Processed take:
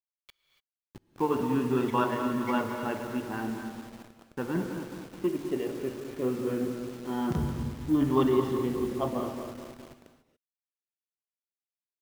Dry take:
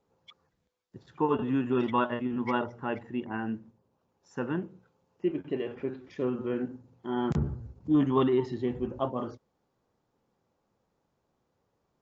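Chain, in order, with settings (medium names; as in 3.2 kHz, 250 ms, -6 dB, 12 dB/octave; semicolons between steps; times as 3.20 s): backward echo that repeats 106 ms, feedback 79%, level -10 dB; de-hum 73.38 Hz, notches 28; 4.55–5.27 s: waveshaping leveller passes 1; hysteresis with a dead band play -42.5 dBFS; delay 110 ms -23 dB; bit crusher 8-bit; gated-style reverb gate 310 ms rising, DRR 9.5 dB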